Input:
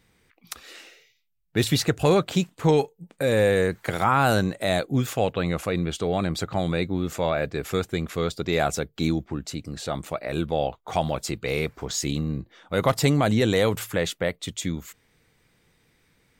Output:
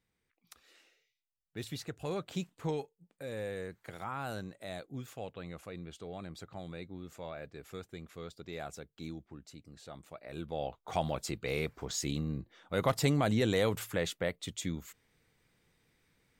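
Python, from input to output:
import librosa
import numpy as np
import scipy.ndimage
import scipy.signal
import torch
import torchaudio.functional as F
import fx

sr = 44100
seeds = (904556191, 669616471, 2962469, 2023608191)

y = fx.gain(x, sr, db=fx.line((2.02, -19.0), (2.5, -12.0), (2.92, -19.0), (10.1, -19.0), (10.89, -8.0)))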